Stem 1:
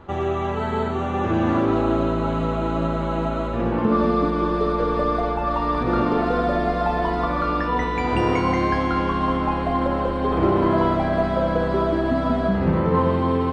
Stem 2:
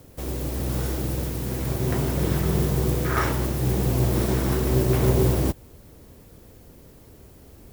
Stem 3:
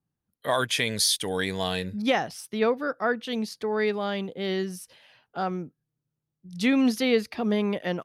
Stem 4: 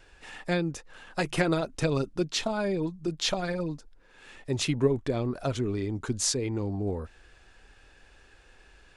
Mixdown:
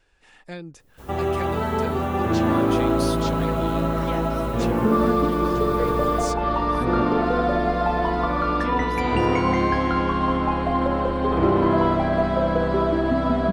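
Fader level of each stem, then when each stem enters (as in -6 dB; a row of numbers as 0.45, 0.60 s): 0.0, -14.5, -12.0, -8.5 dB; 1.00, 0.80, 2.00, 0.00 s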